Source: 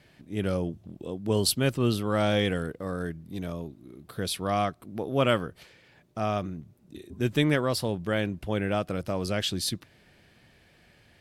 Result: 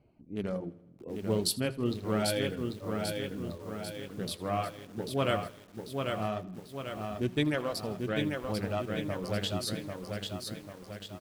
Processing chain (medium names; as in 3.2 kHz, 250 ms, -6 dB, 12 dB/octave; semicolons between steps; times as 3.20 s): local Wiener filter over 25 samples; feedback delay 80 ms, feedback 56%, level -10 dB; reverb removal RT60 1.3 s; flange 0.27 Hz, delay 2.6 ms, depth 9.3 ms, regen -61%; bit-crushed delay 793 ms, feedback 55%, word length 9-bit, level -4 dB